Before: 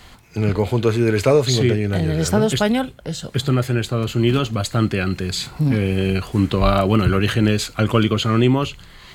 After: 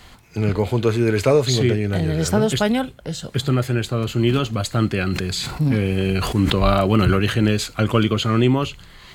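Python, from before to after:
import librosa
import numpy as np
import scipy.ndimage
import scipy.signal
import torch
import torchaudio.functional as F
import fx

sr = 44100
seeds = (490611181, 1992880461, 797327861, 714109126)

y = fx.sustainer(x, sr, db_per_s=38.0, at=(4.98, 7.18))
y = F.gain(torch.from_numpy(y), -1.0).numpy()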